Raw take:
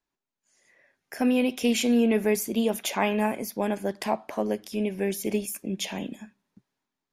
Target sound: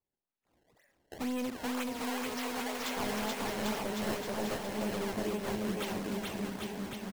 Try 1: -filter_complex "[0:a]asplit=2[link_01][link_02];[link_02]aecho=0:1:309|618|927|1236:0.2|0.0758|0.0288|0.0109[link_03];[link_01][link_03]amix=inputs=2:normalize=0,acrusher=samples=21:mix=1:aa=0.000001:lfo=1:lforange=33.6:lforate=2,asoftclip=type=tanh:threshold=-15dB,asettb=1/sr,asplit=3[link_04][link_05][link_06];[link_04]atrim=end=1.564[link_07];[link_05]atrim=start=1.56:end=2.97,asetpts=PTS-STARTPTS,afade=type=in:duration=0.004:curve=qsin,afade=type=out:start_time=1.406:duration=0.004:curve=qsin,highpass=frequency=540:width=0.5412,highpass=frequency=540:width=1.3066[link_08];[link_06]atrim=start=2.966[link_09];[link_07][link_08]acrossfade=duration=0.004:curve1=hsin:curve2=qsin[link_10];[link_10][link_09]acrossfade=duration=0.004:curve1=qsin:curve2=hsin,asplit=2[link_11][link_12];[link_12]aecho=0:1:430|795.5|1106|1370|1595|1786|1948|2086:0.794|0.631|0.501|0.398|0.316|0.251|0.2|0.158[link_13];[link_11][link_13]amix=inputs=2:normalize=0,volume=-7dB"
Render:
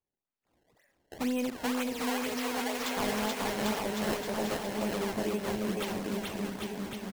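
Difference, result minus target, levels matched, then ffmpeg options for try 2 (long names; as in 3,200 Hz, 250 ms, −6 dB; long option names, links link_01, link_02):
soft clipping: distortion −11 dB
-filter_complex "[0:a]asplit=2[link_01][link_02];[link_02]aecho=0:1:309|618|927|1236:0.2|0.0758|0.0288|0.0109[link_03];[link_01][link_03]amix=inputs=2:normalize=0,acrusher=samples=21:mix=1:aa=0.000001:lfo=1:lforange=33.6:lforate=2,asoftclip=type=tanh:threshold=-24dB,asettb=1/sr,asplit=3[link_04][link_05][link_06];[link_04]atrim=end=1.564[link_07];[link_05]atrim=start=1.56:end=2.97,asetpts=PTS-STARTPTS,afade=type=in:duration=0.004:curve=qsin,afade=type=out:start_time=1.406:duration=0.004:curve=qsin,highpass=frequency=540:width=0.5412,highpass=frequency=540:width=1.3066[link_08];[link_06]atrim=start=2.966[link_09];[link_07][link_08]acrossfade=duration=0.004:curve1=hsin:curve2=qsin[link_10];[link_10][link_09]acrossfade=duration=0.004:curve1=qsin:curve2=hsin,asplit=2[link_11][link_12];[link_12]aecho=0:1:430|795.5|1106|1370|1595|1786|1948|2086:0.794|0.631|0.501|0.398|0.316|0.251|0.2|0.158[link_13];[link_11][link_13]amix=inputs=2:normalize=0,volume=-7dB"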